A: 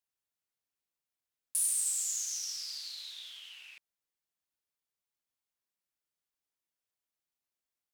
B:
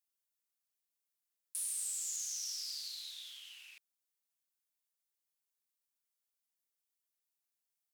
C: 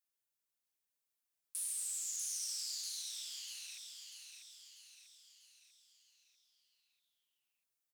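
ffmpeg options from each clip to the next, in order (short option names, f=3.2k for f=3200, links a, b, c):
-filter_complex "[0:a]acrossover=split=4700[a][b];[b]acompressor=threshold=-40dB:ratio=4:attack=1:release=60[c];[a][c]amix=inputs=2:normalize=0,highpass=f=340:p=1,highshelf=f=4.8k:g=11,volume=-6.5dB"
-filter_complex "[0:a]flanger=delay=2.5:depth=8.6:regen=62:speed=1.6:shape=triangular,asplit=2[a][b];[b]aecho=0:1:643|1286|1929|2572|3215|3858:0.501|0.256|0.13|0.0665|0.0339|0.0173[c];[a][c]amix=inputs=2:normalize=0,volume=3dB"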